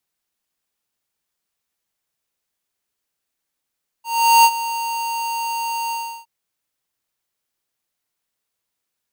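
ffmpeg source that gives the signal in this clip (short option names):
-f lavfi -i "aevalsrc='0.335*(2*lt(mod(924*t,1),0.5)-1)':d=2.215:s=44100,afade=t=in:d=0.403,afade=t=out:st=0.403:d=0.057:silence=0.188,afade=t=out:st=1.87:d=0.345"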